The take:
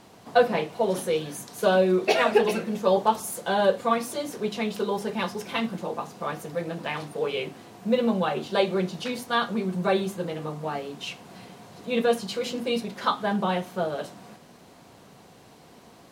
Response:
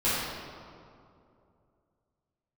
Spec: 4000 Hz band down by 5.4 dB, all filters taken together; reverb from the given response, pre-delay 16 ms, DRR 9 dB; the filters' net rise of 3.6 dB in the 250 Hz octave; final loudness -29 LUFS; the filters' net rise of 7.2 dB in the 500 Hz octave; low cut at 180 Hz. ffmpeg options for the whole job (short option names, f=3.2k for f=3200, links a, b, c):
-filter_complex "[0:a]highpass=180,equalizer=f=250:t=o:g=4.5,equalizer=f=500:t=o:g=7.5,equalizer=f=4k:t=o:g=-7.5,asplit=2[a][b];[1:a]atrim=start_sample=2205,adelay=16[c];[b][c]afir=irnorm=-1:irlink=0,volume=-22dB[d];[a][d]amix=inputs=2:normalize=0,volume=-8.5dB"